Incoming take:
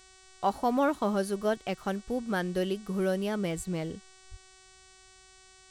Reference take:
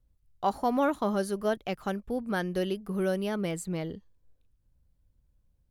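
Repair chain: de-hum 376.5 Hz, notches 24; 3.56–3.68 s: high-pass 140 Hz 24 dB/octave; 4.30–4.42 s: high-pass 140 Hz 24 dB/octave

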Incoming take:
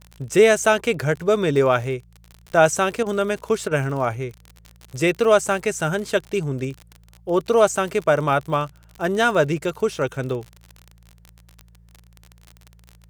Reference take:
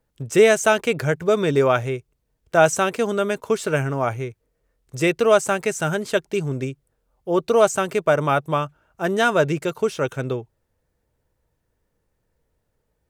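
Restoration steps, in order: de-click; de-hum 56.7 Hz, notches 3; interpolate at 3.03/3.68 s, 30 ms

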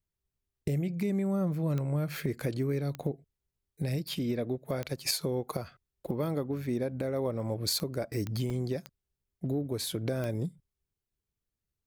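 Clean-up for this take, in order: de-click; interpolate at 8.50 s, 2.8 ms

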